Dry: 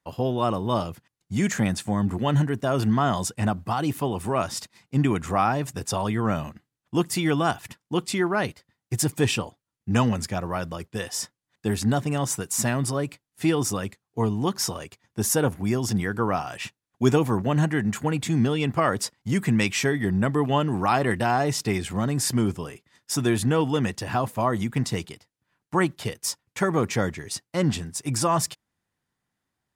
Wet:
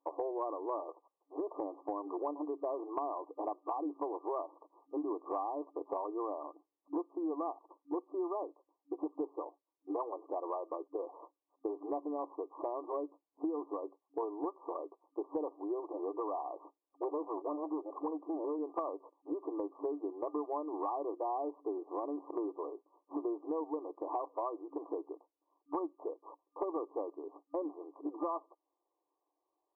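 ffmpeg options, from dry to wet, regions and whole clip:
ffmpeg -i in.wav -filter_complex "[0:a]asettb=1/sr,asplit=3[link_01][link_02][link_03];[link_01]atrim=end=0.884[link_04];[link_02]atrim=start=0.88:end=1.53,asetpts=PTS-STARTPTS,afade=type=in:duration=0.004:curve=qsin,afade=type=out:start_time=0.646:duration=0.004:curve=qsin,highpass=frequency=430:width=0.5412,highpass=frequency=430:width=1.3066,acontrast=39[link_05];[link_03]atrim=start=1.526[link_06];[link_04][link_05]acrossfade=duration=0.004:curve1=hsin:curve2=qsin[link_07];[link_07][link_06]acrossfade=duration=0.004:curve1=qsin:curve2=hsin,asettb=1/sr,asplit=3[link_08][link_09][link_10];[link_08]atrim=end=15.804[link_11];[link_09]atrim=start=15.8:end=18.59,asetpts=PTS-STARTPTS,afade=type=in:duration=0.004:curve=qsin,afade=type=out:start_time=2.786:duration=0.004:curve=qsin,highpass=frequency=81:width=0.5412,highpass=frequency=81:width=1.3066,volume=21dB,asoftclip=hard,volume=-21dB[link_12];[link_10]atrim=start=18.586[link_13];[link_11][link_12]acrossfade=duration=0.004:curve1=hsin:curve2=qsin[link_14];[link_14][link_13]acrossfade=duration=0.004:curve1=qsin:curve2=hsin,afftfilt=real='re*between(b*sr/4096,280,1200)':imag='im*between(b*sr/4096,280,1200)':win_size=4096:overlap=0.75,acompressor=threshold=-37dB:ratio=6,volume=2dB" out.wav

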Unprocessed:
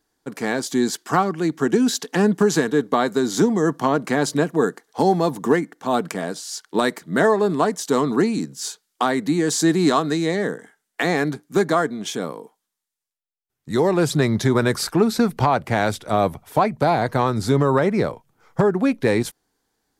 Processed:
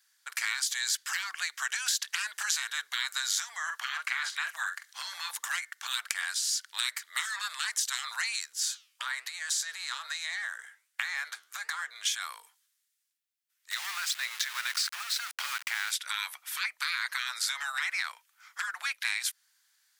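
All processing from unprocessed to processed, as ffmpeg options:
ffmpeg -i in.wav -filter_complex "[0:a]asettb=1/sr,asplit=3[link_01][link_02][link_03];[link_01]atrim=end=3.564[link_04];[link_02]atrim=start=3.56:end=5.31,asetpts=PTS-STARTPTS,afade=type=in:duration=0.004:curve=qsin,afade=type=out:start_time=1.746:duration=0.004:curve=qsin,highpass=frequency=680:poles=1,acrossover=split=3100[link_05][link_06];[link_06]acompressor=threshold=-47dB:ratio=4:attack=1:release=60[link_07];[link_05][link_07]amix=inputs=2:normalize=0,asplit=2[link_08][link_09];[link_09]adelay=45,volume=-9.5dB[link_10];[link_08][link_10]amix=inputs=2:normalize=0,atrim=end_sample=77175[link_11];[link_03]atrim=start=5.306[link_12];[link_04][link_11]acrossfade=duration=0.004:curve1=hsin:curve2=qsin[link_13];[link_13][link_12]acrossfade=duration=0.004:curve1=qsin:curve2=hsin,asettb=1/sr,asplit=3[link_14][link_15][link_16];[link_14]atrim=end=8.524[link_17];[link_15]atrim=start=8.52:end=11.96,asetpts=PTS-STARTPTS,afade=type=in:duration=0.004:curve=qsin,afade=type=out:start_time=3.436:duration=0.004:curve=qsin,acompressor=threshold=-23dB:ratio=6:attack=3.2:release=140:knee=1:detection=peak,equalizer=frequency=330:width=0.47:gain=11.5,flanger=delay=4.9:depth=8.8:regen=84:speed=1.2:shape=triangular[link_18];[link_16]atrim=start=11.956[link_19];[link_17][link_18]acrossfade=duration=0.004:curve1=hsin:curve2=qsin[link_20];[link_20][link_19]acrossfade=duration=0.004:curve1=qsin:curve2=hsin,asettb=1/sr,asplit=3[link_21][link_22][link_23];[link_21]atrim=end=13.714[link_24];[link_22]atrim=start=13.71:end=15.91,asetpts=PTS-STARTPTS,afade=type=in:duration=0.004:curve=qsin,afade=type=out:start_time=2.196:duration=0.004:curve=qsin,lowpass=6400,acompressor=threshold=-23dB:ratio=4:attack=3.2:release=140:knee=1:detection=peak,aeval=exprs='val(0)*gte(abs(val(0)),0.0211)':channel_layout=same[link_25];[link_23]atrim=start=15.906[link_26];[link_24][link_25]acrossfade=duration=0.004:curve1=hsin:curve2=qsin[link_27];[link_27][link_26]acrossfade=duration=0.004:curve1=qsin:curve2=hsin,afftfilt=real='re*lt(hypot(re,im),0.178)':imag='im*lt(hypot(re,im),0.178)':win_size=1024:overlap=0.75,highpass=frequency=1500:width=0.5412,highpass=frequency=1500:width=1.3066,acompressor=threshold=-34dB:ratio=4,volume=6.5dB" out.wav

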